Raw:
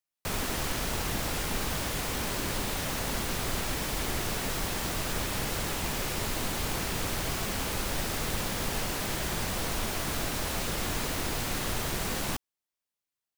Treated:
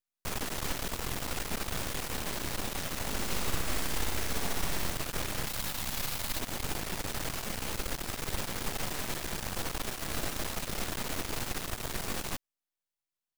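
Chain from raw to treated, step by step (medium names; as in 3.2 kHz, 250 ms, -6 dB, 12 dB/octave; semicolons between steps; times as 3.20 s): 5.47–6.39 s: fifteen-band graphic EQ 400 Hz -10 dB, 4 kHz +4 dB, 16 kHz +7 dB; half-wave rectifier; 3.10–4.90 s: flutter echo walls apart 11 m, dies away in 1 s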